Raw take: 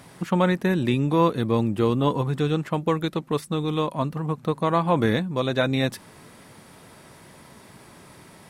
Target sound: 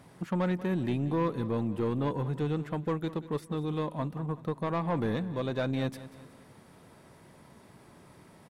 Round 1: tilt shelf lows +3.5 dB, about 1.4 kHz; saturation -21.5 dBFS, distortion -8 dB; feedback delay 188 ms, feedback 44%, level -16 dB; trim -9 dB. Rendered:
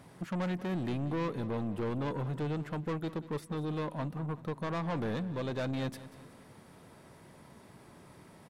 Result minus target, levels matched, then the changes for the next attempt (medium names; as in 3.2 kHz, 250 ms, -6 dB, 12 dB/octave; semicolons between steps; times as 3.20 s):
saturation: distortion +7 dB
change: saturation -13.5 dBFS, distortion -15 dB